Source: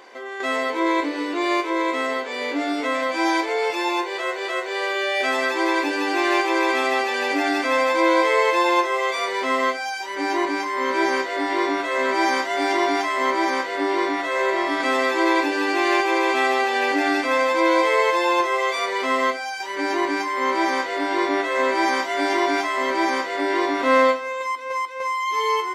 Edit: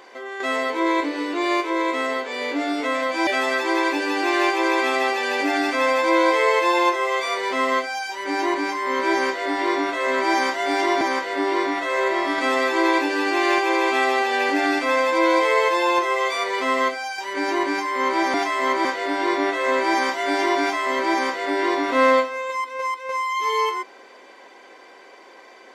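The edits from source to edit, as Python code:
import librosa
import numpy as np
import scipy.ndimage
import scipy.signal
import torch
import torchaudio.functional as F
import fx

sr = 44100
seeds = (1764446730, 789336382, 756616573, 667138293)

y = fx.edit(x, sr, fx.cut(start_s=3.27, length_s=1.91),
    fx.move(start_s=12.92, length_s=0.51, to_s=20.76), tone=tone)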